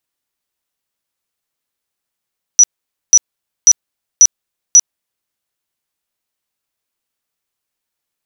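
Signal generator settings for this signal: tone bursts 5890 Hz, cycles 268, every 0.54 s, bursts 5, -1.5 dBFS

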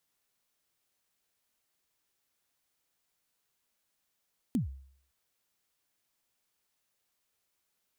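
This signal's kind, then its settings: kick drum length 0.56 s, from 280 Hz, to 67 Hz, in 0.126 s, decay 0.59 s, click on, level -23 dB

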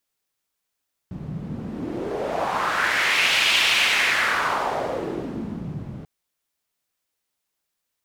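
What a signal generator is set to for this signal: wind-like swept noise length 4.94 s, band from 150 Hz, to 2800 Hz, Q 2.4, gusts 1, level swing 14 dB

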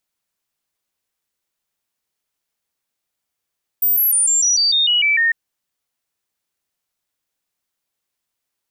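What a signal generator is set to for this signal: stepped sine 14700 Hz down, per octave 3, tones 10, 0.15 s, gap 0.00 s -12.5 dBFS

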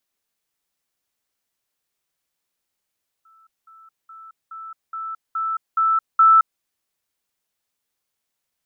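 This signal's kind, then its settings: level ladder 1320 Hz -51 dBFS, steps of 6 dB, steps 8, 0.22 s 0.20 s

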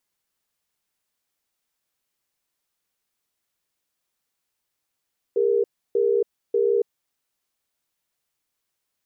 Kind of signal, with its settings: cadence 404 Hz, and 468 Hz, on 0.28 s, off 0.31 s, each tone -20 dBFS 1.68 s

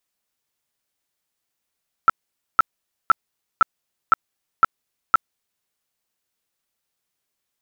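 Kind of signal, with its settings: tone bursts 1330 Hz, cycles 22, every 0.51 s, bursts 7, -8 dBFS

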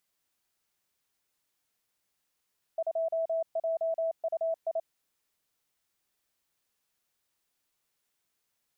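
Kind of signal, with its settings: Morse "2JUI" 28 wpm 655 Hz -26.5 dBFS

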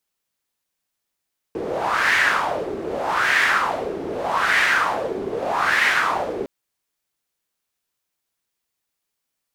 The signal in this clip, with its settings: wind-like swept noise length 4.91 s, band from 380 Hz, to 1900 Hz, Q 3.9, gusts 4, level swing 10 dB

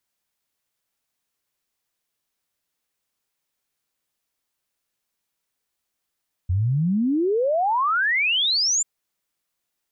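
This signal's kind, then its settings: log sweep 85 Hz -> 7400 Hz 2.34 s -18 dBFS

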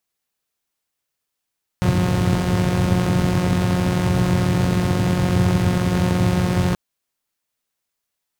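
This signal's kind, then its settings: four-cylinder engine model, steady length 4.93 s, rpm 5400, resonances 110 Hz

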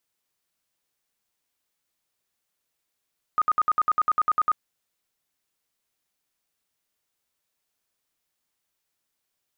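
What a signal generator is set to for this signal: tone bursts 1240 Hz, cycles 46, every 0.10 s, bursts 12, -17 dBFS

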